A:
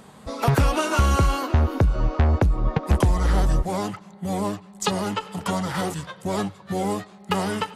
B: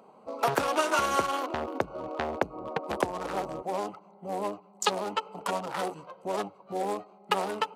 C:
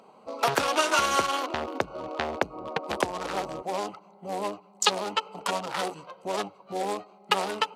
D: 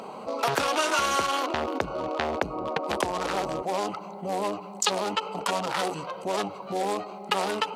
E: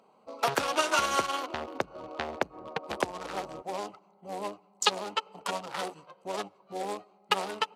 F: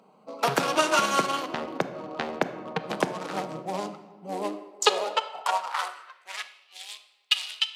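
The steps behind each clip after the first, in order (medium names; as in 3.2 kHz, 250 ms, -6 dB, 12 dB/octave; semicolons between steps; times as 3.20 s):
local Wiener filter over 25 samples; high-pass 450 Hz 12 dB/octave
peaking EQ 4.2 kHz +7.5 dB 2.5 oct
level flattener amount 50%; trim -3.5 dB
on a send at -20 dB: reverberation RT60 1.4 s, pre-delay 105 ms; on the sum: upward expansion 2.5:1, over -38 dBFS; trim +2 dB
simulated room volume 880 m³, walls mixed, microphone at 0.51 m; high-pass sweep 170 Hz -> 3.2 kHz, 4.02–6.85 s; trim +2.5 dB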